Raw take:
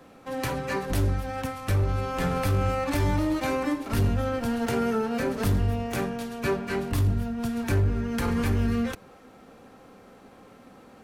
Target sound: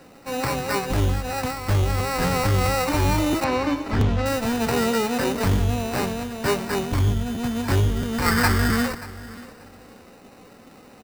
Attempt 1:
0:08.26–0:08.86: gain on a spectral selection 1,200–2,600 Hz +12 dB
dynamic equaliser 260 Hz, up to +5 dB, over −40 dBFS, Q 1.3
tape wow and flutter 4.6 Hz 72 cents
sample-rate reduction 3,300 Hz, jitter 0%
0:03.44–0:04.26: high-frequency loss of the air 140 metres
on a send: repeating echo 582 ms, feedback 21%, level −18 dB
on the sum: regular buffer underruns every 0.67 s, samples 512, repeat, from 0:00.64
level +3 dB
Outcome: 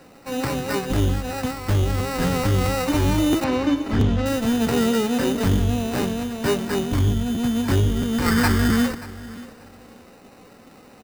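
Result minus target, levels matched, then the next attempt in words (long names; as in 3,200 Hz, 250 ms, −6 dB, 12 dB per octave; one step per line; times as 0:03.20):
1,000 Hz band −4.0 dB
0:08.26–0:08.86: gain on a spectral selection 1,200–2,600 Hz +12 dB
dynamic equaliser 970 Hz, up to +5 dB, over −40 dBFS, Q 1.3
tape wow and flutter 4.6 Hz 72 cents
sample-rate reduction 3,300 Hz, jitter 0%
0:03.44–0:04.26: high-frequency loss of the air 140 metres
on a send: repeating echo 582 ms, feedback 21%, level −18 dB
on the sum: regular buffer underruns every 0.67 s, samples 512, repeat, from 0:00.64
level +3 dB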